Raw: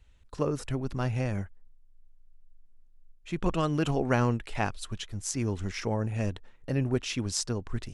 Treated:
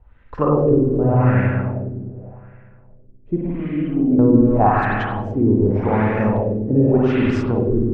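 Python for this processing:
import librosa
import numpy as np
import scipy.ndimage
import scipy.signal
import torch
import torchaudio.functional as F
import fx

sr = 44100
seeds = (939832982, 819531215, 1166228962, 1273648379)

y = fx.formant_cascade(x, sr, vowel='i', at=(3.39, 4.19))
y = fx.rev_spring(y, sr, rt60_s=2.5, pass_ms=(47, 51), chirp_ms=50, drr_db=-4.0)
y = fx.filter_lfo_lowpass(y, sr, shape='sine', hz=0.86, low_hz=340.0, high_hz=1800.0, q=2.4)
y = y * librosa.db_to_amplitude(7.5)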